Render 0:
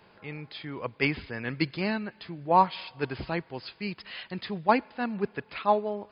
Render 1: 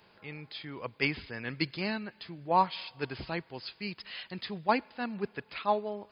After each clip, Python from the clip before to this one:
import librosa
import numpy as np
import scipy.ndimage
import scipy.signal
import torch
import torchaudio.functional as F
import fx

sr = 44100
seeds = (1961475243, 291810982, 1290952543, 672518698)

y = fx.high_shelf(x, sr, hz=3800.0, db=10.0)
y = y * 10.0 ** (-5.0 / 20.0)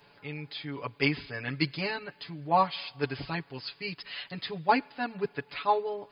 y = x + 0.96 * np.pad(x, (int(7.0 * sr / 1000.0), 0))[:len(x)]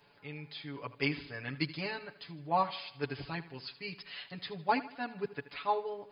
y = fx.echo_feedback(x, sr, ms=78, feedback_pct=45, wet_db=-16)
y = y * 10.0 ** (-5.5 / 20.0)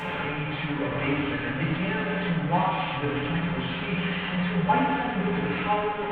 y = fx.delta_mod(x, sr, bps=16000, step_db=-29.0)
y = fx.rev_fdn(y, sr, rt60_s=1.4, lf_ratio=1.3, hf_ratio=0.65, size_ms=34.0, drr_db=-4.5)